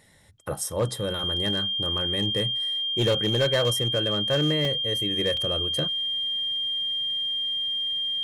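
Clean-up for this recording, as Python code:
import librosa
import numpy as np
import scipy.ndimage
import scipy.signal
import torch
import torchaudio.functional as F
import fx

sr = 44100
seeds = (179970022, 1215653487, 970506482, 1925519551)

y = fx.fix_declip(x, sr, threshold_db=-17.0)
y = fx.notch(y, sr, hz=3200.0, q=30.0)
y = fx.fix_interpolate(y, sr, at_s=(4.65, 5.37), length_ms=2.6)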